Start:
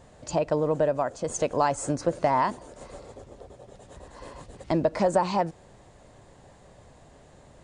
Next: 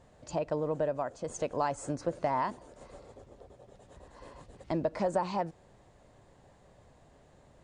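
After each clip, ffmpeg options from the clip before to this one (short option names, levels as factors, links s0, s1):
-af "highshelf=f=5600:g=-5,volume=0.447"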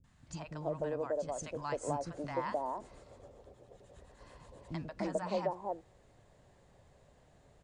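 -filter_complex "[0:a]acrossover=split=270|940[s0][s1][s2];[s2]adelay=40[s3];[s1]adelay=300[s4];[s0][s4][s3]amix=inputs=3:normalize=0,volume=0.75"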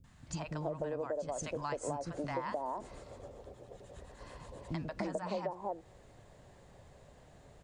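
-af "acompressor=threshold=0.01:ratio=4,volume=1.88"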